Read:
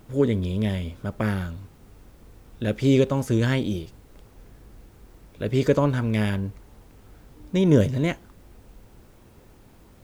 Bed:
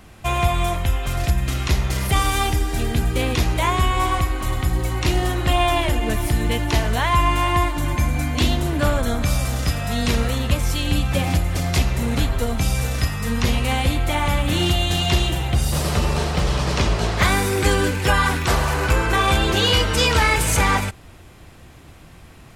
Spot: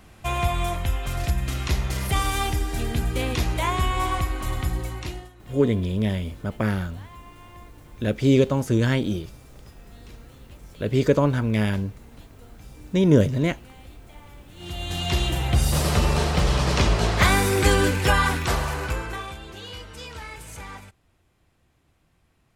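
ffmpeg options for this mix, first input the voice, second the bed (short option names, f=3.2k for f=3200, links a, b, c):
-filter_complex "[0:a]adelay=5400,volume=1dB[a];[1:a]volume=23dB,afade=t=out:st=4.64:d=0.66:silence=0.0668344,afade=t=in:st=14.56:d=1.01:silence=0.0421697,afade=t=out:st=17.92:d=1.43:silence=0.0944061[b];[a][b]amix=inputs=2:normalize=0"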